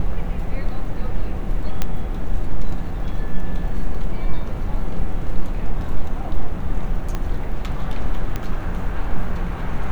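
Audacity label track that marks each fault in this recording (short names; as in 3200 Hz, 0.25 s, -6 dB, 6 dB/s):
1.820000	1.820000	pop -6 dBFS
7.150000	7.150000	pop -12 dBFS
8.360000	8.360000	pop -11 dBFS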